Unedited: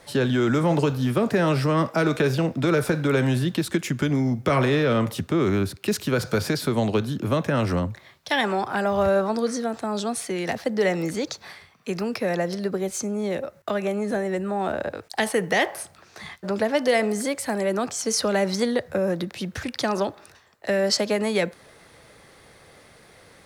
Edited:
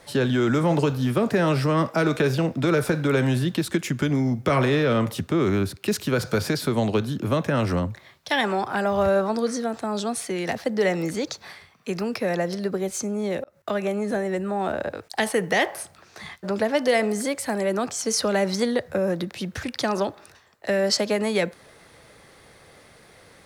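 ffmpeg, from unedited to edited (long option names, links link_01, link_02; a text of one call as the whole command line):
ffmpeg -i in.wav -filter_complex "[0:a]asplit=2[link_01][link_02];[link_01]atrim=end=13.44,asetpts=PTS-STARTPTS,afade=type=out:start_time=13.436:duration=0.004:curve=hsin[link_03];[link_02]atrim=start=13.44,asetpts=PTS-STARTPTS,afade=type=in:duration=0.28[link_04];[link_03][link_04]concat=n=2:v=0:a=1" out.wav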